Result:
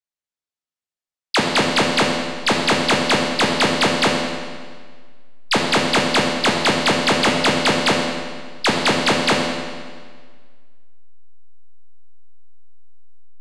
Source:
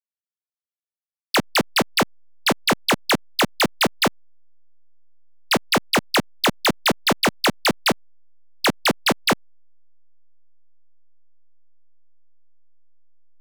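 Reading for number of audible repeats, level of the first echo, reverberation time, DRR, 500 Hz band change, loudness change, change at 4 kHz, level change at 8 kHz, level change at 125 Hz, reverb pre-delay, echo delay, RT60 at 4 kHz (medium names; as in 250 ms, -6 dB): no echo, no echo, 1.7 s, -1.5 dB, +4.5 dB, +3.0 dB, +3.5 dB, +1.5 dB, +4.0 dB, 12 ms, no echo, 1.5 s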